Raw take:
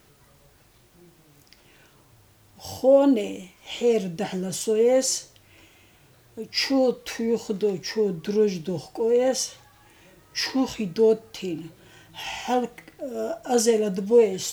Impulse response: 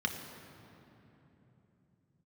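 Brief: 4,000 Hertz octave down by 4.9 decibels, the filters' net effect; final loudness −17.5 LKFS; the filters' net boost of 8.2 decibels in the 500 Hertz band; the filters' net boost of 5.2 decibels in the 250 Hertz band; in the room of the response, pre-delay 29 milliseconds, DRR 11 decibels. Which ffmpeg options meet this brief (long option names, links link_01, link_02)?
-filter_complex "[0:a]equalizer=frequency=250:width_type=o:gain=4,equalizer=frequency=500:width_type=o:gain=8,equalizer=frequency=4000:width_type=o:gain=-7.5,asplit=2[link_01][link_02];[1:a]atrim=start_sample=2205,adelay=29[link_03];[link_02][link_03]afir=irnorm=-1:irlink=0,volume=-17dB[link_04];[link_01][link_04]amix=inputs=2:normalize=0,volume=-1.5dB"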